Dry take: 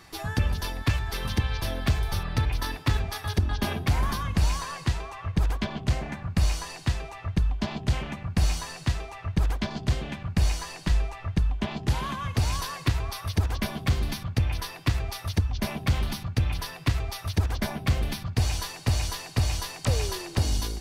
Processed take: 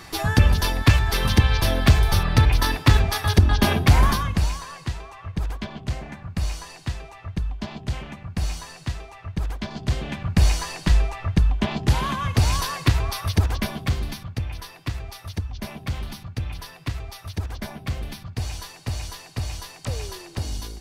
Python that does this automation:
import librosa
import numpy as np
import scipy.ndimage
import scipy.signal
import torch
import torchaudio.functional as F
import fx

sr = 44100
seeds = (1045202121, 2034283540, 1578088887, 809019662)

y = fx.gain(x, sr, db=fx.line((4.06, 9.0), (4.6, -2.5), (9.54, -2.5), (10.29, 6.0), (13.29, 6.0), (14.47, -4.0)))